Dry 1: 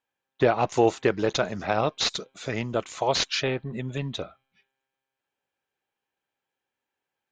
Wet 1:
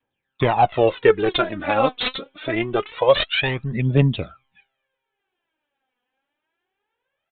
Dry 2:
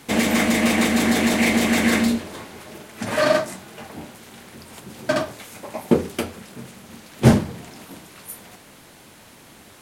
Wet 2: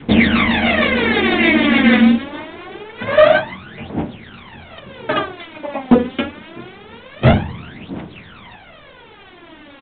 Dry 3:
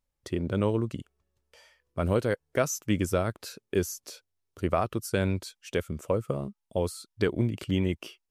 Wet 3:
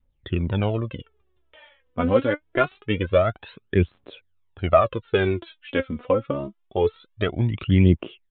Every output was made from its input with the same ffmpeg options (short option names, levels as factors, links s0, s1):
-af "adynamicequalizer=threshold=0.0158:dfrequency=710:dqfactor=1.2:tfrequency=710:tqfactor=1.2:attack=5:release=100:ratio=0.375:range=2:mode=cutabove:tftype=bell,aphaser=in_gain=1:out_gain=1:delay=4.1:decay=0.75:speed=0.25:type=triangular,aresample=8000,volume=2.37,asoftclip=hard,volume=0.422,aresample=44100,volume=1.58"